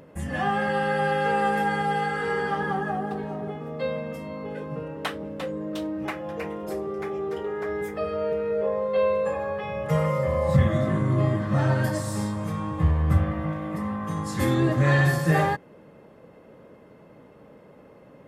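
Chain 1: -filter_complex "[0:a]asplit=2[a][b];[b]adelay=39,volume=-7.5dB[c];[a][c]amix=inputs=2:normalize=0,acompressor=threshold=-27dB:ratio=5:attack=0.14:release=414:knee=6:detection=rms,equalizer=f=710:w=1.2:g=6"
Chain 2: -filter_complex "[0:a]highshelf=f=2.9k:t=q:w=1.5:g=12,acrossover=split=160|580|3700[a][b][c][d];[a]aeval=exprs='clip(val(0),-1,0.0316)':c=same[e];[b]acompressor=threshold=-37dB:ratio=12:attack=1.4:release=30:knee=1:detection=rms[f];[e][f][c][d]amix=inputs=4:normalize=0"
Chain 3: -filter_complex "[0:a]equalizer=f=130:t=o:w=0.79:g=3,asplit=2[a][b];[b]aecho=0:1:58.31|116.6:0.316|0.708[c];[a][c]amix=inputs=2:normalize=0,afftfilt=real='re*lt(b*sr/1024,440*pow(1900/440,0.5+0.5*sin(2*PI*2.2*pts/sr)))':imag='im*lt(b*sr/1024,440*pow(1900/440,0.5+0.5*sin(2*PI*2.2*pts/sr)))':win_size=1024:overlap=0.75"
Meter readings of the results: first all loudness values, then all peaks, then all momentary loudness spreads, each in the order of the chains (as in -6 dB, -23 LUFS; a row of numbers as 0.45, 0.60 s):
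-31.5, -28.5, -23.5 LUFS; -20.0, -10.0, -6.0 dBFS; 18, 10, 12 LU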